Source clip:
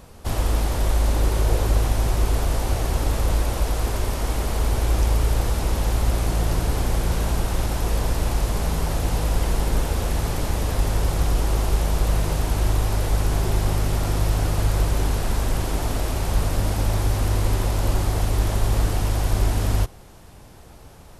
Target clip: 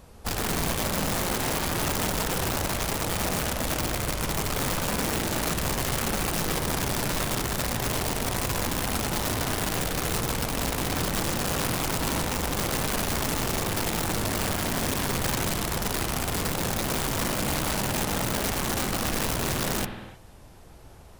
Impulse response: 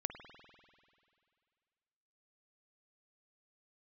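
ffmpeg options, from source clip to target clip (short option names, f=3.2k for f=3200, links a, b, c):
-filter_complex "[0:a]asettb=1/sr,asplit=3[a][b][c];[a]atrim=end=11.314[d];[b]atrim=start=11.31:end=11.89,asetpts=PTS-STARTPTS,afade=t=in:d=0.004:c=qsin,afade=t=out:st=0.576:d=0.004:c=qsin,aeval=exprs='val(0)+0.0355*(sin(2*PI*50*n/s)+sin(2*PI*2*50*n/s)/2+sin(2*PI*3*50*n/s)/3+sin(2*PI*4*50*n/s)/4+sin(2*PI*5*50*n/s)/5)':c=same[e];[c]atrim=start=11.886[f];[d][e]acrossfade=d=0.004:c1=hsin:c2=qsin[g];[g][f]acrossfade=d=0.004:c1=qsin:c2=hsin,aeval=exprs='(mod(8.41*val(0)+1,2)-1)/8.41':c=same[h];[1:a]atrim=start_sample=2205,afade=t=out:st=0.38:d=0.01,atrim=end_sample=17199[i];[h][i]afir=irnorm=-1:irlink=0,volume=-3.5dB"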